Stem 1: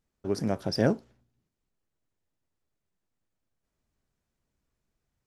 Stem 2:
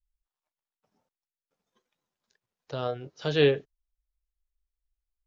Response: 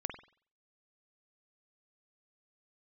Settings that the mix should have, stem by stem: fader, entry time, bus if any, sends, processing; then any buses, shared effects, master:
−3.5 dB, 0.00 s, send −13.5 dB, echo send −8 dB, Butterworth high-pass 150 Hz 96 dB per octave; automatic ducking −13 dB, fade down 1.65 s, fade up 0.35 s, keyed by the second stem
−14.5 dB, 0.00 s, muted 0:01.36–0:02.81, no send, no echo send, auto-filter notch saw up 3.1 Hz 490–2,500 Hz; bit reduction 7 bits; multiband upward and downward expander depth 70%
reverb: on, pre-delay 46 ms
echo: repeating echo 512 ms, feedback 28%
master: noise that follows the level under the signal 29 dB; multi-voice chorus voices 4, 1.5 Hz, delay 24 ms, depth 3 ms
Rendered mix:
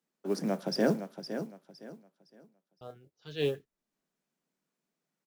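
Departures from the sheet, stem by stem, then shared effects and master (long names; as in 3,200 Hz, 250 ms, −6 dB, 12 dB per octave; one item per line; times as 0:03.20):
stem 2: missing bit reduction 7 bits
master: missing multi-voice chorus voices 4, 1.5 Hz, delay 24 ms, depth 3 ms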